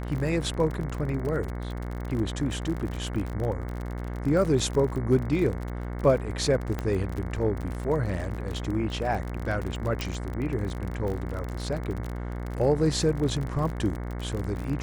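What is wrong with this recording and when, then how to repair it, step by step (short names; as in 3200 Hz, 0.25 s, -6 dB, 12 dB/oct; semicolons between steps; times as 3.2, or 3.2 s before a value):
buzz 60 Hz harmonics 37 -33 dBFS
crackle 42/s -31 dBFS
6.79 pop -17 dBFS
10.01 pop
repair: de-click; de-hum 60 Hz, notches 37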